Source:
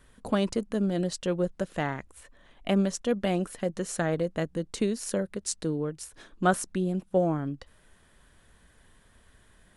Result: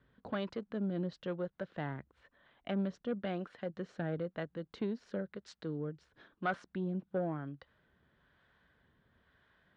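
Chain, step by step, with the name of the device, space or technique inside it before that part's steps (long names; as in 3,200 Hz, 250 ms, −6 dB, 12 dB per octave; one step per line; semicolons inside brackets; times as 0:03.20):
guitar amplifier with harmonic tremolo (two-band tremolo in antiphase 1 Hz, depth 50%, crossover 510 Hz; soft clipping −19.5 dBFS, distortion −16 dB; loudspeaker in its box 76–3,800 Hz, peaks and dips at 140 Hz +3 dB, 1,500 Hz +4 dB, 2,600 Hz −4 dB)
level −6.5 dB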